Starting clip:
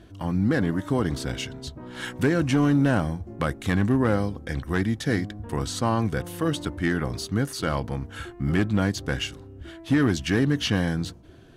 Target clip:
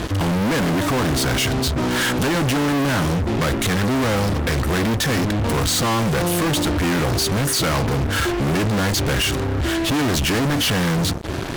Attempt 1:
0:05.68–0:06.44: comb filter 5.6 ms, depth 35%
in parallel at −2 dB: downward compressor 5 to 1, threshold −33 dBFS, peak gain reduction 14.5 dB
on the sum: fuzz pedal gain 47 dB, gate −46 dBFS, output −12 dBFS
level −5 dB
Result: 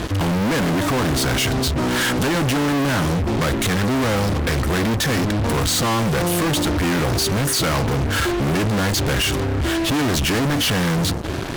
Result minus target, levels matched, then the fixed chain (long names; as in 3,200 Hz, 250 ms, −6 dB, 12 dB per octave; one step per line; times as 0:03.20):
downward compressor: peak gain reduction −7 dB
0:05.68–0:06.44: comb filter 5.6 ms, depth 35%
in parallel at −2 dB: downward compressor 5 to 1, threshold −42 dBFS, peak gain reduction 21.5 dB
on the sum: fuzz pedal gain 47 dB, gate −46 dBFS, output −12 dBFS
level −5 dB